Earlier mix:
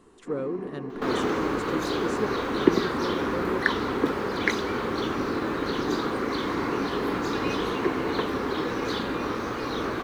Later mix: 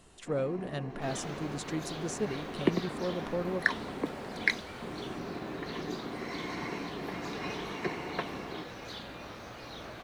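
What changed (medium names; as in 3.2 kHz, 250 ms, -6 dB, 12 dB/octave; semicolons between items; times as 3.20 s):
speech +4.0 dB; second sound -11.0 dB; master: add FFT filter 160 Hz 0 dB, 260 Hz -8 dB, 450 Hz -9 dB, 640 Hz +4 dB, 1.1 kHz -7 dB, 2.6 kHz +2 dB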